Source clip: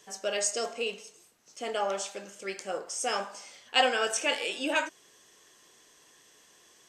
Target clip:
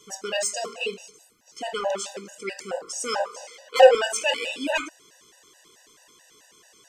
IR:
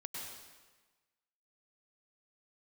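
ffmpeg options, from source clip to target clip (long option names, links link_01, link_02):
-filter_complex "[0:a]asoftclip=type=tanh:threshold=-19dB,asettb=1/sr,asplit=3[link_01][link_02][link_03];[link_01]atrim=end=3.204[link_04];[link_02]atrim=start=3.2:end=3.95,asetpts=PTS-STARTPTS,afade=type=in:duration=0.004:curve=qsin,afade=type=out:start_time=0.746:duration=0.004:curve=qsin,highpass=frequency=510:width_type=q:width=4.9[link_05];[link_03]atrim=start=3.946[link_06];[link_04][link_05]acrossfade=duration=0.004:curve1=hsin:curve2=qsin[link_07];[link_07][link_06]acrossfade=duration=0.004:curve1=qsin:curve2=hsin,afftfilt=real='re*gt(sin(2*PI*4.6*pts/sr)*(1-2*mod(floor(b*sr/1024/500),2)),0)':imag='im*gt(sin(2*PI*4.6*pts/sr)*(1-2*mod(floor(b*sr/1024/500),2)),0)':win_size=1024:overlap=0.75,volume=7dB"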